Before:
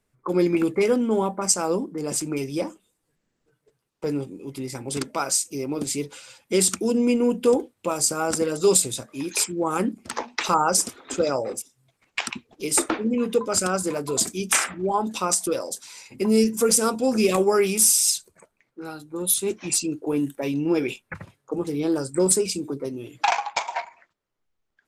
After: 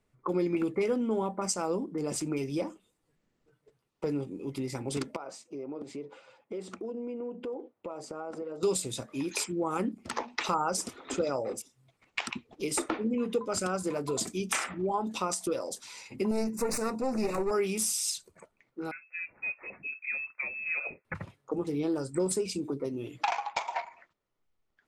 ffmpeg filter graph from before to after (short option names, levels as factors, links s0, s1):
-filter_complex "[0:a]asettb=1/sr,asplit=3[s0][s1][s2];[s0]atrim=end=5.164[s3];[s1]atrim=start=5.16:end=8.63,asetpts=PTS-STARTPTS,afade=t=in:d=0.004:c=qsin,afade=t=out:st=3.466:d=0.004:c=qsin,bandpass=f=590:t=q:w=0.88,acompressor=threshold=0.0158:ratio=4:attack=3.2:release=140:knee=1:detection=peak[s4];[s2]atrim=start=8.626[s5];[s3][s4]acrossfade=d=0.004:c1=hsin:c2=qsin[s6];[s6][s5]acrossfade=d=0.004:c1=qsin:c2=hsin,asettb=1/sr,asplit=3[s7][s8][s9];[s7]atrim=end=16.314[s10];[s8]atrim=start=16.31:end=17.51,asetpts=PTS-STARTPTS,afade=t=in:d=0.004:c=qsin,afade=t=out:st=1.196:d=0.004:c=qsin,aeval=exprs='clip(val(0),-1,0.0562)':c=same,asuperstop=centerf=3200:order=4:qfactor=2.7[s11];[s9]atrim=start=17.506[s12];[s10][s11]acrossfade=d=0.004:c1=hsin:c2=qsin[s13];[s13][s12]acrossfade=d=0.004:c1=qsin:c2=hsin,asettb=1/sr,asplit=3[s14][s15][s16];[s14]atrim=end=18.914[s17];[s15]atrim=start=18.91:end=21.05,asetpts=PTS-STARTPTS,afade=t=in:d=0.004:c=qsin,afade=t=out:st=2.136:d=0.004:c=qsin,highpass=f=280:w=0.5412,highpass=f=280:w=1.3066,acrossover=split=440 2000:gain=0.224 1 0.251[s18][s19][s20];[s18][s19][s20]amix=inputs=3:normalize=0,lowpass=f=2500:t=q:w=0.5098,lowpass=f=2500:t=q:w=0.6013,lowpass=f=2500:t=q:w=0.9,lowpass=f=2500:t=q:w=2.563,afreqshift=-2900[s21];[s16]atrim=start=21.046[s22];[s17][s21]acrossfade=d=0.004:c1=hsin:c2=qsin[s23];[s23][s22]acrossfade=d=0.004:c1=qsin:c2=hsin,lowpass=f=4000:p=1,bandreject=f=1600:w=15,acompressor=threshold=0.0251:ratio=2"